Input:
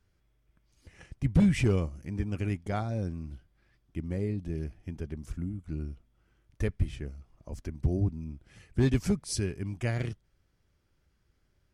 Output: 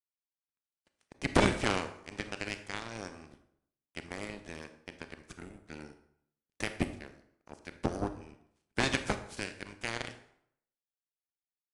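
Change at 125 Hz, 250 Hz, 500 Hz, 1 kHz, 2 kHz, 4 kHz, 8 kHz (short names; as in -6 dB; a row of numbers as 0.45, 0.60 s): -12.0, -6.5, -1.5, +6.5, +6.5, +6.0, -1.0 dB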